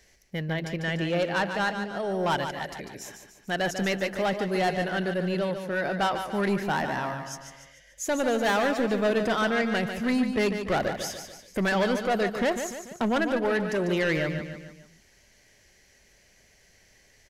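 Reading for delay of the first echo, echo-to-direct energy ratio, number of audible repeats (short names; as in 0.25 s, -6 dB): 0.146 s, -7.0 dB, 4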